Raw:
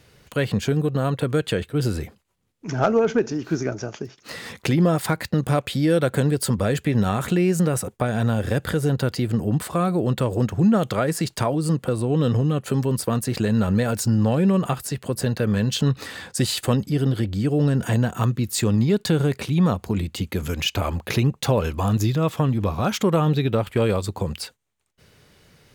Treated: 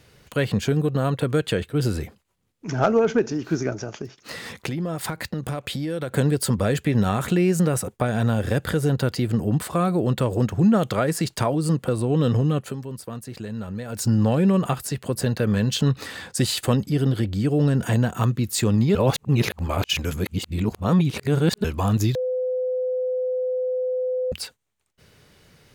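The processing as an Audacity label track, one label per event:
3.750000	6.130000	compression, threshold -24 dBFS
12.590000	14.060000	dip -11.5 dB, fades 0.17 s
18.950000	21.640000	reverse
22.150000	24.320000	bleep 508 Hz -21.5 dBFS

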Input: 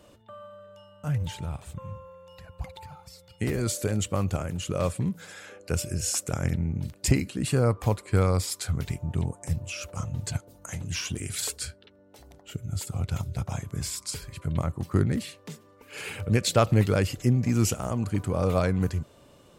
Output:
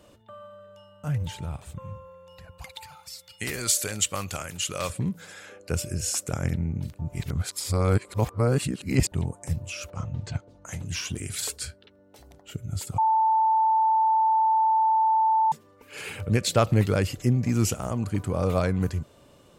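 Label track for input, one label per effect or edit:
2.580000	4.900000	tilt shelf lows -9.5 dB
6.990000	9.120000	reverse
9.900000	10.660000	distance through air 130 m
12.980000	15.520000	bleep 884 Hz -18 dBFS

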